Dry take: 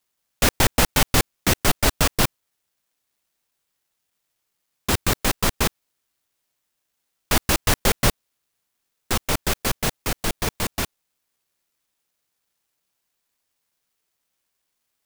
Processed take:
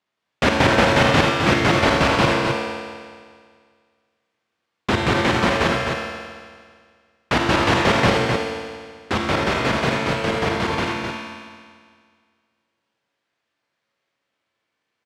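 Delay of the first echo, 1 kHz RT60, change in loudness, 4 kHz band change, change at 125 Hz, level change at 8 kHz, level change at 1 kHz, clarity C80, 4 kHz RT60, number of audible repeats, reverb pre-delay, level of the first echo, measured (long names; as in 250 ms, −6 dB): 259 ms, 1.9 s, +3.0 dB, +1.5 dB, +3.5 dB, −9.5 dB, +7.5 dB, 0.0 dB, 1.9 s, 1, 38 ms, −6.0 dB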